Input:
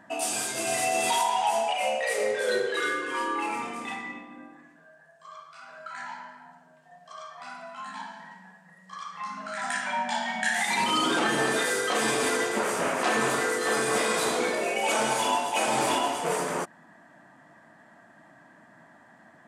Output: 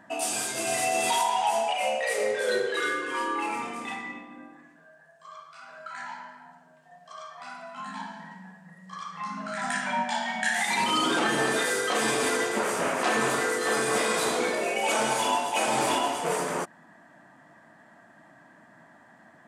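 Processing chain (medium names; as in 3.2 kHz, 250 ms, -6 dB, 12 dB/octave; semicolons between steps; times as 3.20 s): 7.75–10.04 s: peaking EQ 130 Hz +9.5 dB 2.6 oct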